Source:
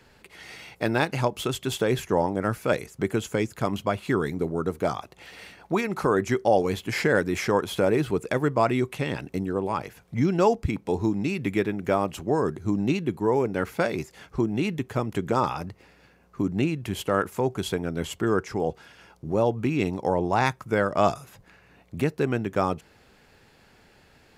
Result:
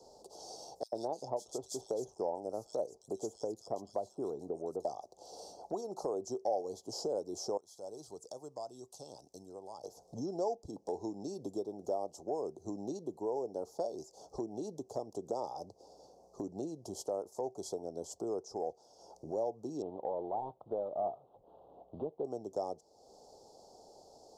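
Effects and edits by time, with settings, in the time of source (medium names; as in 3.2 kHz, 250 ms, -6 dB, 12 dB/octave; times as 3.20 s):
0.83–4.85 s: bands offset in time highs, lows 90 ms, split 2.5 kHz
7.57–9.84 s: amplifier tone stack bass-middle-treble 5-5-5
19.82–22.25 s: CVSD coder 16 kbps
whole clip: Chebyshev band-stop 750–5400 Hz, order 3; three-band isolator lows -22 dB, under 410 Hz, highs -19 dB, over 7.2 kHz; compression 2:1, threshold -54 dBFS; trim +8 dB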